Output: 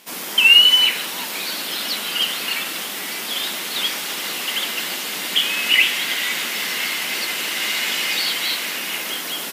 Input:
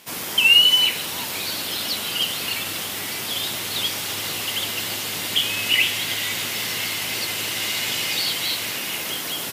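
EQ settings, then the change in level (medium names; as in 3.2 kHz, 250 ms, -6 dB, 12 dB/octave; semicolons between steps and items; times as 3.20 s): dynamic bell 1.7 kHz, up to +6 dB, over -34 dBFS, Q 0.91; brick-wall FIR high-pass 160 Hz; 0.0 dB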